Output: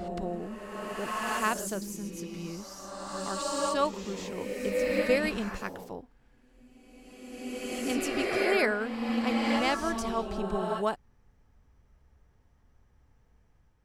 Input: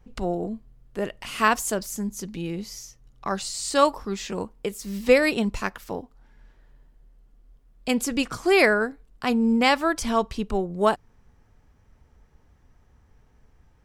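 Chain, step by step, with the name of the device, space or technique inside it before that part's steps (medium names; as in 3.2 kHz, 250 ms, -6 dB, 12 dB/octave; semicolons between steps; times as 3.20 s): reverse reverb (reverse; reverberation RT60 2.2 s, pre-delay 97 ms, DRR 0.5 dB; reverse); trim -9 dB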